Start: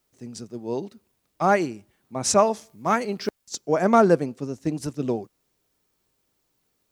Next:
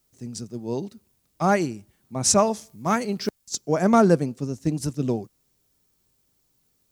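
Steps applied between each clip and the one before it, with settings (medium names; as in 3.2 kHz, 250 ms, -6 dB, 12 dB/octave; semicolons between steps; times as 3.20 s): tone controls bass +8 dB, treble +7 dB; trim -2 dB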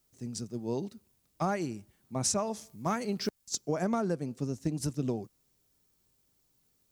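compression 10:1, threshold -23 dBFS, peak gain reduction 12 dB; trim -3.5 dB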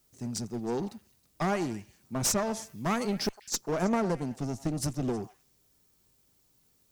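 one-sided clip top -34 dBFS; repeats whose band climbs or falls 106 ms, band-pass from 890 Hz, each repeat 1.4 oct, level -12 dB; trim +4.5 dB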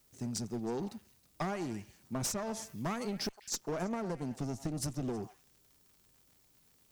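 compression 4:1, threshold -34 dBFS, peak gain reduction 10 dB; crackle 97 per s -53 dBFS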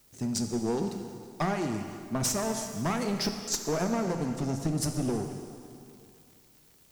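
plate-style reverb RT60 2.4 s, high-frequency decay 0.9×, DRR 5.5 dB; trim +6 dB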